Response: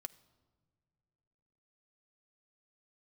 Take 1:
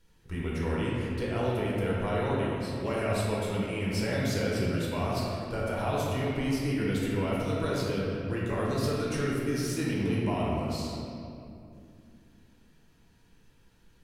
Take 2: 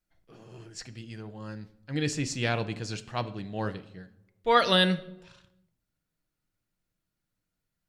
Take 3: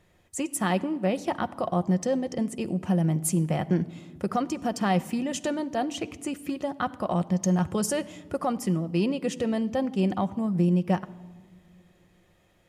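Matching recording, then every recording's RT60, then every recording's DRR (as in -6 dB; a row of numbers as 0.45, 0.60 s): 3; 2.6 s, 0.85 s, not exponential; -6.0, 9.5, 10.0 dB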